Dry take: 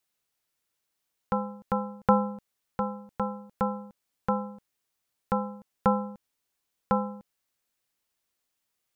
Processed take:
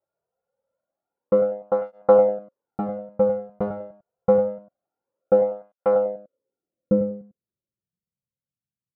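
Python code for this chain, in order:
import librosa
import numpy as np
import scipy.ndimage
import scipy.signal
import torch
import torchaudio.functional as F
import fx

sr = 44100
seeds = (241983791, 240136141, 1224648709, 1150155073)

p1 = fx.halfwave_hold(x, sr)
p2 = fx.filter_sweep_lowpass(p1, sr, from_hz=740.0, to_hz=140.0, start_s=5.85, end_s=8.38, q=2.5)
p3 = fx.small_body(p2, sr, hz=(530.0, 1400.0), ring_ms=65, db=18)
p4 = p3 + fx.echo_single(p3, sr, ms=99, db=-10.0, dry=0)
p5 = fx.flanger_cancel(p4, sr, hz=0.26, depth_ms=4.2)
y = p5 * librosa.db_to_amplitude(-4.0)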